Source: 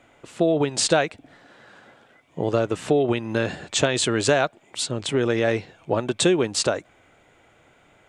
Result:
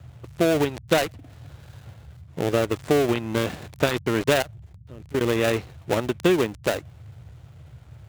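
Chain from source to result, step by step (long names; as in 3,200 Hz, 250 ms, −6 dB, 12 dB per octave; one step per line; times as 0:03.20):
gap after every zero crossing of 0.26 ms
0:04.42–0:05.21: output level in coarse steps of 21 dB
noise in a band 62–140 Hz −44 dBFS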